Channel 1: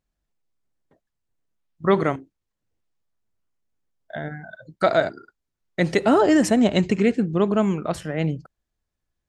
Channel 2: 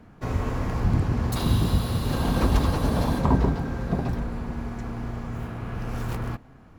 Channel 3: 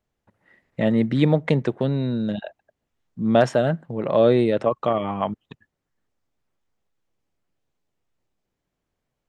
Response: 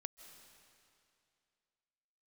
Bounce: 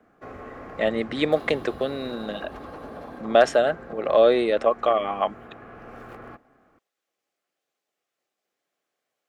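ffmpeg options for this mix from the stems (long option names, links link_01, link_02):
-filter_complex "[1:a]acrossover=split=290 2300:gain=0.112 1 0.158[link_01][link_02][link_03];[link_01][link_02][link_03]amix=inputs=3:normalize=0,acompressor=threshold=-32dB:ratio=6,volume=-3dB[link_04];[2:a]highpass=490,volume=3dB[link_05];[link_04][link_05]amix=inputs=2:normalize=0,asuperstop=centerf=940:order=4:qfactor=6.8"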